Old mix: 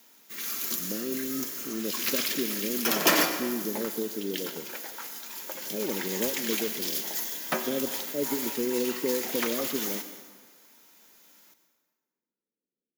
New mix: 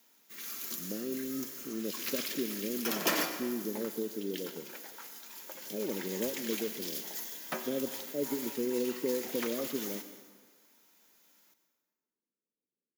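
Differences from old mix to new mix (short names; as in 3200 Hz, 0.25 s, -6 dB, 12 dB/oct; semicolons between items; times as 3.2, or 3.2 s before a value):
speech -3.5 dB; background -8.0 dB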